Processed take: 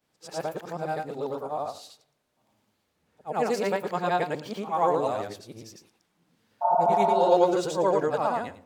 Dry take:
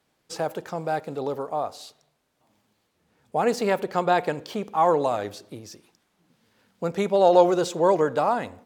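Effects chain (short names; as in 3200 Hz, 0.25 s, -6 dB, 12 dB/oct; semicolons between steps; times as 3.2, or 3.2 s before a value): short-time reversal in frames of 0.23 s; spectral repair 6.65–7.27, 580–1500 Hz after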